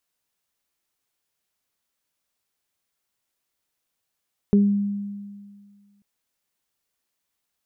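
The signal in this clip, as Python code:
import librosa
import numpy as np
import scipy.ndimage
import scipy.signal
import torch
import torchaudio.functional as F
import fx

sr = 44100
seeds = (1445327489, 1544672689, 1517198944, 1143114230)

y = fx.additive(sr, length_s=1.49, hz=202.0, level_db=-12, upper_db=(-6.5,), decay_s=1.89, upper_decays_s=(0.31,))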